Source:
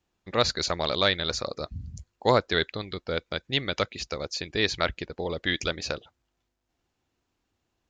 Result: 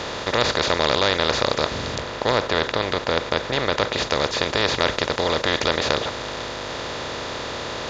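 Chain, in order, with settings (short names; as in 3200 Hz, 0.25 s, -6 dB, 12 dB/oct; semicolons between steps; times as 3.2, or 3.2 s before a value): per-bin compression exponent 0.2; 1.98–3.93 high shelf 4200 Hz -6.5 dB; gain -3.5 dB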